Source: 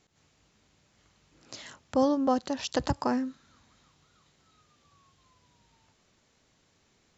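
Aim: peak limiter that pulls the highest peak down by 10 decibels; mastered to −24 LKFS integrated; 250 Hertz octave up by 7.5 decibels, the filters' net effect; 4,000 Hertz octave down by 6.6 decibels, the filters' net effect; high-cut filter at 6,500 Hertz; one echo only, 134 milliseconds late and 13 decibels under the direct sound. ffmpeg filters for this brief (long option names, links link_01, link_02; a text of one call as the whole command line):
ffmpeg -i in.wav -af "lowpass=6500,equalizer=frequency=250:width_type=o:gain=8,equalizer=frequency=4000:width_type=o:gain=-8,alimiter=limit=-20dB:level=0:latency=1,aecho=1:1:134:0.224,volume=5dB" out.wav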